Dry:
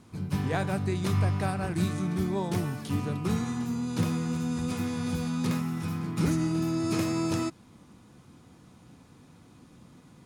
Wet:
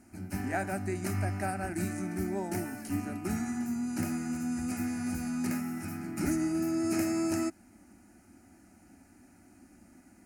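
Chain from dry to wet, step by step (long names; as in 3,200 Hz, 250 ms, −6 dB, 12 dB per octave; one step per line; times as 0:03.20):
high-shelf EQ 5,900 Hz +5 dB
phaser with its sweep stopped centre 710 Hz, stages 8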